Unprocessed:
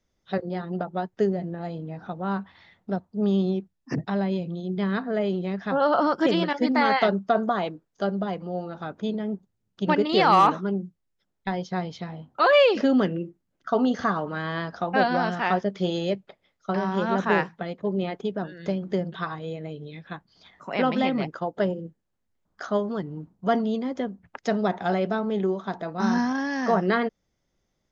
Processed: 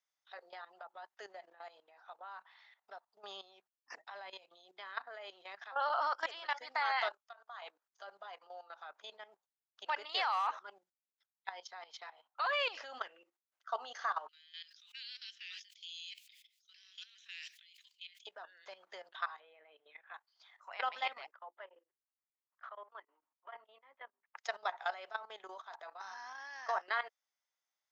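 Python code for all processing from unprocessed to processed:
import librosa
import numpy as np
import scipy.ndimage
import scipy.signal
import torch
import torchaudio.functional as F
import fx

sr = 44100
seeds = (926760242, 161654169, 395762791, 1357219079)

y = fx.chain(x, sr, fx.highpass(hz=1200.0, slope=6),
    fx.level_steps(step_db=20), at=(7.12, 7.62))
y = fx.chain(y, sr, fx.steep_highpass(hz=2600.0, slope=36),
    fx.sustainer(db_per_s=56.0), at=(14.28, 18.27))
y = fx.chain(y, sr, fx.lowpass(hz=2600.0, slope=24),
    fx.band_squash(depth_pct=70), at=(19.4, 20.14))
y = fx.chain(y, sr, fx.cabinet(low_hz=270.0, low_slope=24, high_hz=2500.0, hz=(460.0, 750.0, 1500.0), db=(-6, -7, -5)),
    fx.hum_notches(base_hz=50, count=8),
    fx.tremolo_abs(hz=6.6), at=(21.32, 24.36))
y = scipy.signal.sosfilt(scipy.signal.butter(4, 810.0, 'highpass', fs=sr, output='sos'), y)
y = fx.level_steps(y, sr, step_db=15)
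y = y * 10.0 ** (-3.0 / 20.0)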